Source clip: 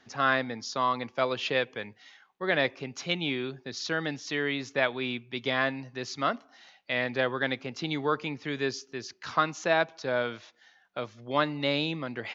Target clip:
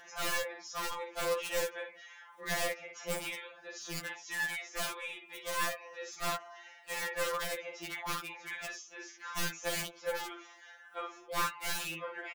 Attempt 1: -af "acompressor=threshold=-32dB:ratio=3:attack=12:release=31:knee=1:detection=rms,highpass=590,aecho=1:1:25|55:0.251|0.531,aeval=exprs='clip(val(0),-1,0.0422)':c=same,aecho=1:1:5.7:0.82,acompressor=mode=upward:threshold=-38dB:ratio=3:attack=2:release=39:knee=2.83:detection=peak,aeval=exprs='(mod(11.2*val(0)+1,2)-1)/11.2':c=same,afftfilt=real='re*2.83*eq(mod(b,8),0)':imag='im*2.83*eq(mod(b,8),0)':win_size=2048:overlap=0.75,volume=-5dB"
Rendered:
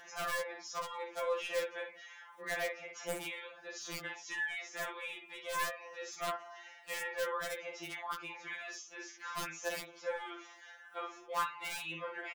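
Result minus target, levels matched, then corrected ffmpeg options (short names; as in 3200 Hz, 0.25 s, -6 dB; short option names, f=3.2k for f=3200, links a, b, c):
compressor: peak gain reduction +10 dB
-af "highpass=590,aecho=1:1:25|55:0.251|0.531,aeval=exprs='clip(val(0),-1,0.0422)':c=same,aecho=1:1:5.7:0.82,acompressor=mode=upward:threshold=-38dB:ratio=3:attack=2:release=39:knee=2.83:detection=peak,aeval=exprs='(mod(11.2*val(0)+1,2)-1)/11.2':c=same,afftfilt=real='re*2.83*eq(mod(b,8),0)':imag='im*2.83*eq(mod(b,8),0)':win_size=2048:overlap=0.75,volume=-5dB"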